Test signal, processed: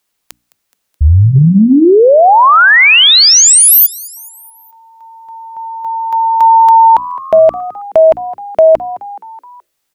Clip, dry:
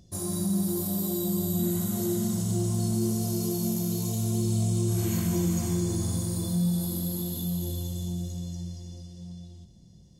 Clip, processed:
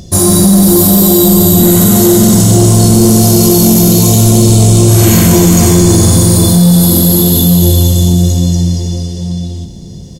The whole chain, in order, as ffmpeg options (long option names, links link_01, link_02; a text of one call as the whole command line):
ffmpeg -i in.wav -filter_complex "[0:a]bandreject=frequency=60:width_type=h:width=6,bandreject=frequency=120:width_type=h:width=6,bandreject=frequency=180:width_type=h:width=6,bandreject=frequency=240:width_type=h:width=6,bandreject=frequency=300:width_type=h:width=6,asplit=5[link_01][link_02][link_03][link_04][link_05];[link_02]adelay=212,afreqshift=85,volume=-22dB[link_06];[link_03]adelay=424,afreqshift=170,volume=-26.9dB[link_07];[link_04]adelay=636,afreqshift=255,volume=-31.8dB[link_08];[link_05]adelay=848,afreqshift=340,volume=-36.6dB[link_09];[link_01][link_06][link_07][link_08][link_09]amix=inputs=5:normalize=0,apsyclip=27.5dB,volume=-1.5dB" out.wav